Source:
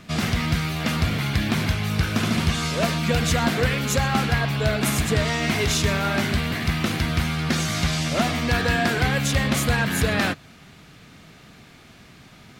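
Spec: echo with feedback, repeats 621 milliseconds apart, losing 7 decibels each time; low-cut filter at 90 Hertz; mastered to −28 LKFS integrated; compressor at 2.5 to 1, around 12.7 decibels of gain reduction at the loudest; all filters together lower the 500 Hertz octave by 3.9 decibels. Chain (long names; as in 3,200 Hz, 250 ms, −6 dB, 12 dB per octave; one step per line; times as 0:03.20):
high-pass filter 90 Hz
parametric band 500 Hz −5 dB
downward compressor 2.5 to 1, threshold −39 dBFS
repeating echo 621 ms, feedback 45%, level −7 dB
level +7 dB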